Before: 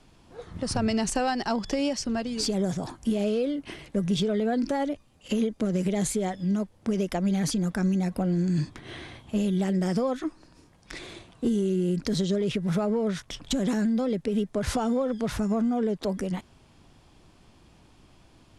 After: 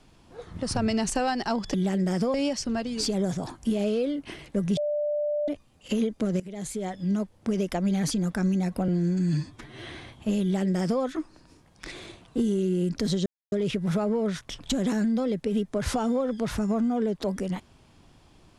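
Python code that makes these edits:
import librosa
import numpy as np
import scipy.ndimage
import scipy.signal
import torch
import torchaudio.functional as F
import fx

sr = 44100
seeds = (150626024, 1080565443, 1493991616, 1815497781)

y = fx.edit(x, sr, fx.bleep(start_s=4.17, length_s=0.71, hz=592.0, db=-24.0),
    fx.fade_in_from(start_s=5.8, length_s=0.72, floor_db=-19.0),
    fx.stretch_span(start_s=8.28, length_s=0.66, factor=1.5),
    fx.duplicate(start_s=9.49, length_s=0.6, to_s=1.74),
    fx.insert_silence(at_s=12.33, length_s=0.26), tone=tone)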